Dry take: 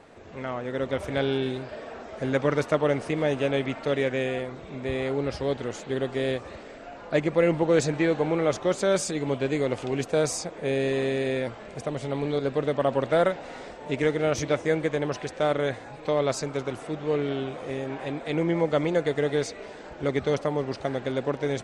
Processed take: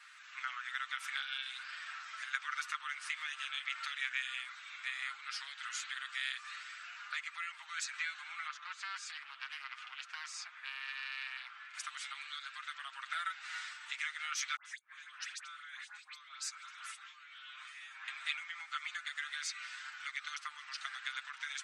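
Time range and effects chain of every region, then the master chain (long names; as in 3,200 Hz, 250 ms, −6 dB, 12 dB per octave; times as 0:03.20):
0:08.47–0:11.74: head-to-tape spacing loss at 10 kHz 22 dB + highs frequency-modulated by the lows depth 0.28 ms
0:14.56–0:18.08: output level in coarse steps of 21 dB + gate with flip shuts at −19 dBFS, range −35 dB + all-pass dispersion highs, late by 93 ms, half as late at 1,800 Hz
whole clip: downward compressor 4 to 1, threshold −29 dBFS; elliptic high-pass filter 1,300 Hz, stop band 60 dB; comb filter 7.5 ms; level +2 dB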